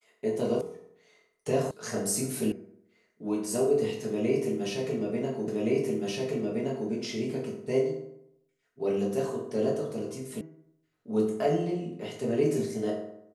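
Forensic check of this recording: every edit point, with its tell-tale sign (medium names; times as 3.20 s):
0.61 s: sound stops dead
1.71 s: sound stops dead
2.52 s: sound stops dead
5.48 s: repeat of the last 1.42 s
10.41 s: sound stops dead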